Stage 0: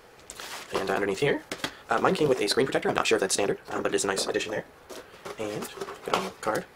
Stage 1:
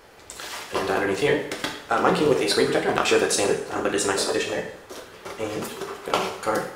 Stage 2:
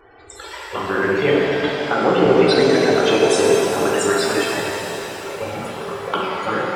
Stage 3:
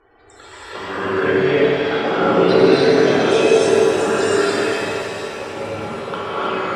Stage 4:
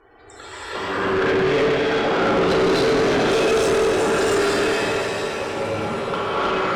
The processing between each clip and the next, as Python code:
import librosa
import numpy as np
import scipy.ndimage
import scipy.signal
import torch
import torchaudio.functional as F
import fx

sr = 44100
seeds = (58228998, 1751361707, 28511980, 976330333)

y1 = fx.rev_double_slope(x, sr, seeds[0], early_s=0.63, late_s=1.8, knee_db=-18, drr_db=1.0)
y1 = y1 * librosa.db_to_amplitude(1.5)
y2 = fx.spec_topn(y1, sr, count=64)
y2 = fx.env_flanger(y2, sr, rest_ms=2.8, full_db=-16.0)
y2 = fx.rev_shimmer(y2, sr, seeds[1], rt60_s=3.6, semitones=7, shimmer_db=-8, drr_db=-2.0)
y2 = y2 * librosa.db_to_amplitude(4.5)
y3 = fx.quant_float(y2, sr, bits=6)
y3 = fx.air_absorb(y3, sr, metres=55.0)
y3 = fx.rev_gated(y3, sr, seeds[2], gate_ms=340, shape='rising', drr_db=-7.5)
y3 = y3 * librosa.db_to_amplitude(-7.0)
y4 = fx.tube_stage(y3, sr, drive_db=19.0, bias=0.3)
y4 = y4 * librosa.db_to_amplitude(3.5)